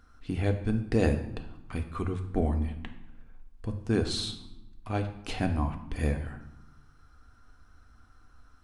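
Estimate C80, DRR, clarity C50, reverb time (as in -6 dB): 12.0 dB, 5.0 dB, 10.0 dB, 0.95 s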